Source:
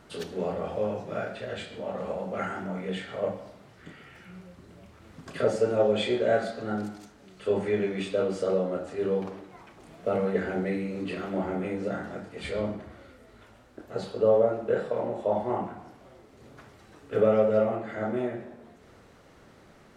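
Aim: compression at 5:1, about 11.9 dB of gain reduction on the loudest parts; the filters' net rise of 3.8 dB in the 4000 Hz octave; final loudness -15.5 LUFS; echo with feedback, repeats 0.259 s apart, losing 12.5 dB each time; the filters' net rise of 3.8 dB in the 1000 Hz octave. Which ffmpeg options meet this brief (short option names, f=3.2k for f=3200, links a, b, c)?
-af "equalizer=f=1k:t=o:g=5.5,equalizer=f=4k:t=o:g=4.5,acompressor=threshold=-30dB:ratio=5,aecho=1:1:259|518|777:0.237|0.0569|0.0137,volume=19dB"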